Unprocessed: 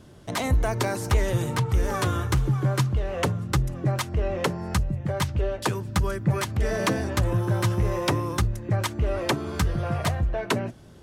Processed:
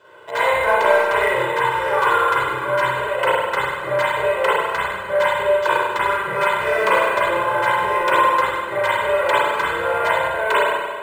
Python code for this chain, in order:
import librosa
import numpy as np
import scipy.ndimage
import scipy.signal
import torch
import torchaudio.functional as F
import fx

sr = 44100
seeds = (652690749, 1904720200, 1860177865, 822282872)

p1 = scipy.signal.sosfilt(scipy.signal.butter(2, 800.0, 'highpass', fs=sr, output='sos'), x)
p2 = fx.high_shelf(p1, sr, hz=7600.0, db=-9.0)
p3 = p2 + 0.85 * np.pad(p2, (int(2.0 * sr / 1000.0), 0))[:len(p2)]
p4 = np.clip(10.0 ** (26.5 / 20.0) * p3, -1.0, 1.0) / 10.0 ** (26.5 / 20.0)
p5 = p3 + (p4 * librosa.db_to_amplitude(-4.0))
p6 = fx.air_absorb(p5, sr, metres=190.0)
p7 = fx.rev_spring(p6, sr, rt60_s=1.5, pass_ms=(32, 47), chirp_ms=55, drr_db=-9.0)
p8 = np.interp(np.arange(len(p7)), np.arange(len(p7))[::4], p7[::4])
y = p8 * librosa.db_to_amplitude(2.5)